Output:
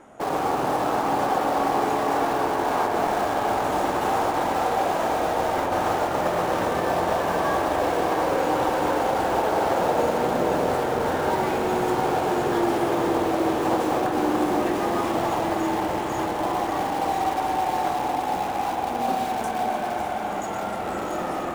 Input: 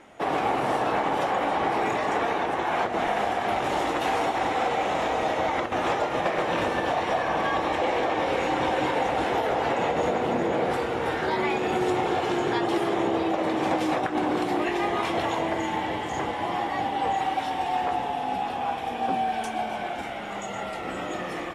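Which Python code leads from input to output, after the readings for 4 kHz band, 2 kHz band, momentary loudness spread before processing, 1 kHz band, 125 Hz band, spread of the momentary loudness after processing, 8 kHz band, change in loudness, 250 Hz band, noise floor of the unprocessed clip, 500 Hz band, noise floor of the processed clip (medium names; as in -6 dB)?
-1.0 dB, -1.0 dB, 4 LU, +2.5 dB, +3.0 dB, 4 LU, +6.0 dB, +2.5 dB, +2.5 dB, -33 dBFS, +2.5 dB, -28 dBFS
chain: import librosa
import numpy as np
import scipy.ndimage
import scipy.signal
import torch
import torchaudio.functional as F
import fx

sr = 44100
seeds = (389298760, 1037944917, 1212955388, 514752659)

p1 = fx.band_shelf(x, sr, hz=3100.0, db=-9.0, octaves=1.7)
p2 = (np.mod(10.0 ** (26.0 / 20.0) * p1 + 1.0, 2.0) - 1.0) / 10.0 ** (26.0 / 20.0)
p3 = p1 + F.gain(torch.from_numpy(p2), -10.5).numpy()
p4 = fx.echo_diffused(p3, sr, ms=624, feedback_pct=79, wet_db=-10.0)
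y = fx.rev_spring(p4, sr, rt60_s=3.8, pass_ms=(46,), chirp_ms=25, drr_db=4.0)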